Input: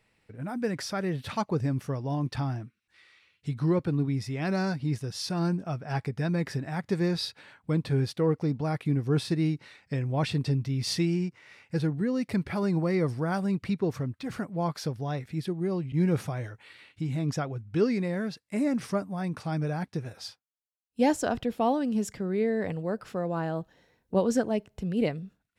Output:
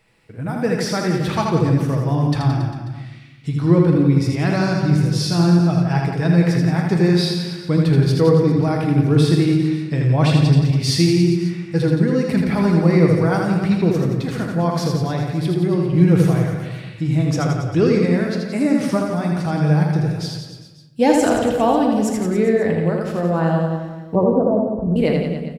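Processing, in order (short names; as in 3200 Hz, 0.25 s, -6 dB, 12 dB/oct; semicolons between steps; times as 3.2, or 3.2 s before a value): 24.15–24.96 steep low-pass 1200 Hz 72 dB/oct; reverse bouncing-ball echo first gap 80 ms, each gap 1.15×, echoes 5; shoebox room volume 420 m³, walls mixed, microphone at 0.65 m; gain +7.5 dB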